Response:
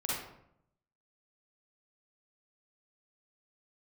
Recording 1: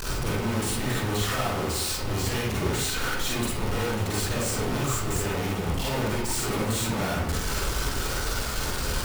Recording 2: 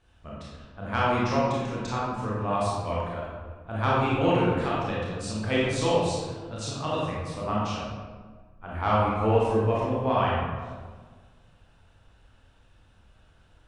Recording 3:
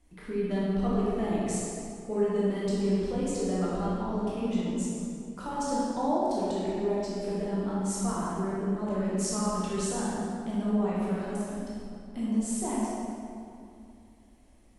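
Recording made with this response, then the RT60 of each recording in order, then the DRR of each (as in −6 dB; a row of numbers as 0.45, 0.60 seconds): 1; 0.75, 1.5, 2.5 seconds; −6.5, −6.5, −8.0 decibels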